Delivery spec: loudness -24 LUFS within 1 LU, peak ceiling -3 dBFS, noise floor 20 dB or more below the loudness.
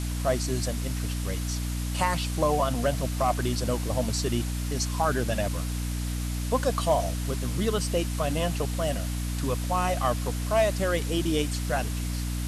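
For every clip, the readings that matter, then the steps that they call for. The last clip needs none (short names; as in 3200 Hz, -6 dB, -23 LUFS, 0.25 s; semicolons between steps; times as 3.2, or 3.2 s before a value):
hum 60 Hz; harmonics up to 300 Hz; hum level -28 dBFS; noise floor -30 dBFS; noise floor target -48 dBFS; loudness -28.0 LUFS; peak -11.0 dBFS; loudness target -24.0 LUFS
-> de-hum 60 Hz, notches 5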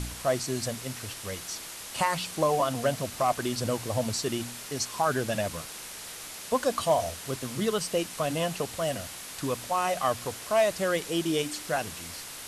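hum none; noise floor -42 dBFS; noise floor target -50 dBFS
-> noise print and reduce 8 dB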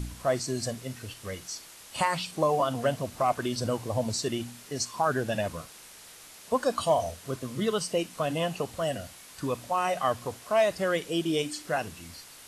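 noise floor -49 dBFS; noise floor target -50 dBFS
-> noise print and reduce 6 dB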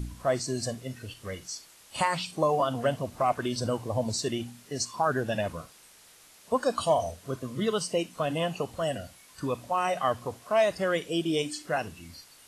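noise floor -55 dBFS; loudness -29.5 LUFS; peak -13.0 dBFS; loudness target -24.0 LUFS
-> gain +5.5 dB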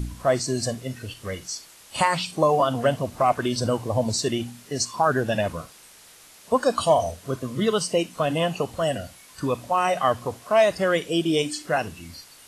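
loudness -24.0 LUFS; peak -7.5 dBFS; noise floor -50 dBFS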